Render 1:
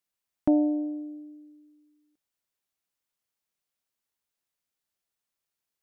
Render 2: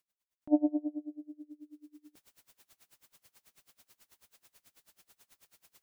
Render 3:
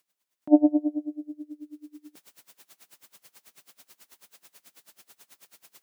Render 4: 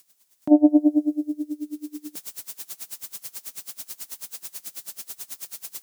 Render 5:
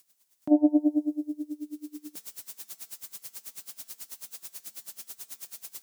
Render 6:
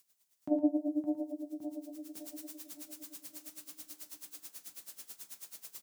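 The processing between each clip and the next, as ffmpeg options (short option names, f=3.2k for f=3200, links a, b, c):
-af "areverse,acompressor=mode=upward:threshold=-39dB:ratio=2.5,areverse,aeval=exprs='val(0)*pow(10,-27*(0.5-0.5*cos(2*PI*9.2*n/s))/20)':c=same,volume=1.5dB"
-af "highpass=170,volume=9dB"
-af "bass=f=250:g=4,treble=f=4k:g=10,alimiter=limit=-14dB:level=0:latency=1:release=326,volume=9dB"
-af "bandreject=f=224.8:t=h:w=4,bandreject=f=449.6:t=h:w=4,bandreject=f=674.4:t=h:w=4,bandreject=f=899.2:t=h:w=4,bandreject=f=1.124k:t=h:w=4,bandreject=f=1.3488k:t=h:w=4,bandreject=f=1.5736k:t=h:w=4,bandreject=f=1.7984k:t=h:w=4,bandreject=f=2.0232k:t=h:w=4,bandreject=f=2.248k:t=h:w=4,bandreject=f=2.4728k:t=h:w=4,bandreject=f=2.6976k:t=h:w=4,bandreject=f=2.9224k:t=h:w=4,bandreject=f=3.1472k:t=h:w=4,bandreject=f=3.372k:t=h:w=4,bandreject=f=3.5968k:t=h:w=4,bandreject=f=3.8216k:t=h:w=4,bandreject=f=4.0464k:t=h:w=4,bandreject=f=4.2712k:t=h:w=4,bandreject=f=4.496k:t=h:w=4,bandreject=f=4.7208k:t=h:w=4,bandreject=f=4.9456k:t=h:w=4,bandreject=f=5.1704k:t=h:w=4,bandreject=f=5.3952k:t=h:w=4,bandreject=f=5.62k:t=h:w=4,bandreject=f=5.8448k:t=h:w=4,bandreject=f=6.0696k:t=h:w=4,bandreject=f=6.2944k:t=h:w=4,bandreject=f=6.5192k:t=h:w=4,bandreject=f=6.744k:t=h:w=4,bandreject=f=6.9688k:t=h:w=4,bandreject=f=7.1936k:t=h:w=4,bandreject=f=7.4184k:t=h:w=4,bandreject=f=7.6432k:t=h:w=4,bandreject=f=7.868k:t=h:w=4,bandreject=f=8.0928k:t=h:w=4,bandreject=f=8.3176k:t=h:w=4,bandreject=f=8.5424k:t=h:w=4,volume=-5.5dB"
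-filter_complex "[0:a]asplit=2[a][b];[b]adelay=564,lowpass=f=2k:p=1,volume=-7.5dB,asplit=2[c][d];[d]adelay=564,lowpass=f=2k:p=1,volume=0.52,asplit=2[e][f];[f]adelay=564,lowpass=f=2k:p=1,volume=0.52,asplit=2[g][h];[h]adelay=564,lowpass=f=2k:p=1,volume=0.52,asplit=2[i][j];[j]adelay=564,lowpass=f=2k:p=1,volume=0.52,asplit=2[k][l];[l]adelay=564,lowpass=f=2k:p=1,volume=0.52[m];[c][e][g][i][k][m]amix=inputs=6:normalize=0[n];[a][n]amix=inputs=2:normalize=0,flanger=delay=7.5:depth=5.4:regen=-50:speed=0.72:shape=triangular,asplit=2[o][p];[p]aecho=0:1:42|112:0.112|0.299[q];[o][q]amix=inputs=2:normalize=0,volume=-2dB"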